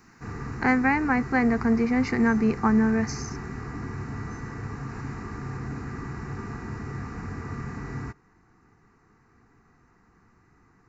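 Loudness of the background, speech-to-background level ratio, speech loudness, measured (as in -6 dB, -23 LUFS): -36.0 LUFS, 12.5 dB, -23.5 LUFS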